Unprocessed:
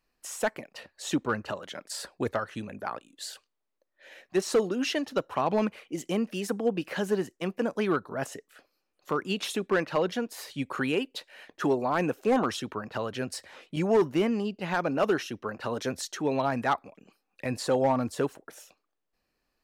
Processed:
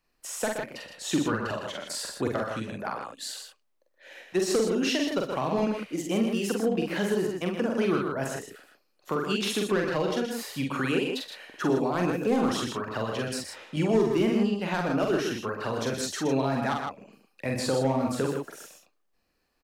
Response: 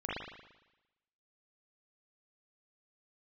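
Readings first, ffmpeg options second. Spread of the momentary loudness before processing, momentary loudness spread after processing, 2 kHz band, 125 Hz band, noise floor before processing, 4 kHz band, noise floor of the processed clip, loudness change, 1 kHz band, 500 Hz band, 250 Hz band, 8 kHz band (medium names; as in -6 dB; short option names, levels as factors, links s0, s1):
12 LU, 10 LU, +1.0 dB, +4.0 dB, -80 dBFS, +3.5 dB, -72 dBFS, +1.5 dB, -1.0 dB, +1.0 dB, +3.0 dB, +3.5 dB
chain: -filter_complex "[0:a]aecho=1:1:45|59|93|123|158:0.708|0.224|0.119|0.398|0.422,acrossover=split=350|3000[s0][s1][s2];[s1]acompressor=threshold=0.0316:ratio=3[s3];[s0][s3][s2]amix=inputs=3:normalize=0,volume=1.12"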